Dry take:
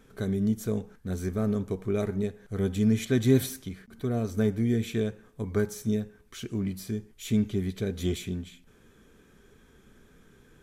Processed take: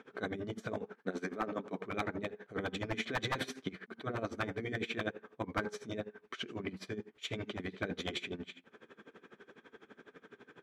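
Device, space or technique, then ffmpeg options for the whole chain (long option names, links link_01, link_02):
helicopter radio: -filter_complex "[0:a]asettb=1/sr,asplit=3[link_01][link_02][link_03];[link_01]atrim=end=0.954[link_04];[link_02]atrim=start=0.95:end=1.78,asetpts=PTS-STARTPTS,afade=type=in:duration=0.004:curve=qsin,afade=type=out:start_time=0.826:duration=0.004:curve=qsin,highpass=210[link_05];[link_03]atrim=start=1.776[link_06];[link_04][link_05]acrossfade=duration=0.004:curve1=hsin:curve2=qsin[link_07];[link_07][link_06]acrossfade=duration=0.004:curve1=qsin:curve2=hsin,highpass=330,lowpass=2700,aeval=exprs='val(0)*pow(10,-22*(0.5-0.5*cos(2*PI*12*n/s))/20)':channel_layout=same,asoftclip=type=hard:threshold=-26dB,afftfilt=real='re*lt(hypot(re,im),0.0501)':imag='im*lt(hypot(re,im),0.0501)':win_size=1024:overlap=0.75,volume=11dB"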